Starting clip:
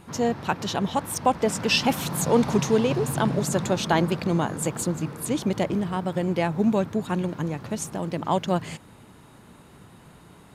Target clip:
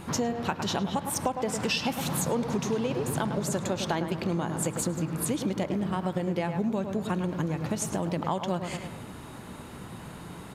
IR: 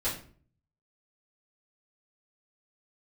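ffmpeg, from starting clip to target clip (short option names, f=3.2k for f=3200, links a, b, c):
-filter_complex "[0:a]asplit=2[a][b];[b]adelay=105,lowpass=f=2.8k:p=1,volume=-9dB,asplit=2[c][d];[d]adelay=105,lowpass=f=2.8k:p=1,volume=0.38,asplit=2[e][f];[f]adelay=105,lowpass=f=2.8k:p=1,volume=0.38,asplit=2[g][h];[h]adelay=105,lowpass=f=2.8k:p=1,volume=0.38[i];[a][c][e][g][i]amix=inputs=5:normalize=0,asplit=2[j][k];[1:a]atrim=start_sample=2205[l];[k][l]afir=irnorm=-1:irlink=0,volume=-23.5dB[m];[j][m]amix=inputs=2:normalize=0,acompressor=threshold=-33dB:ratio=6,volume=6.5dB"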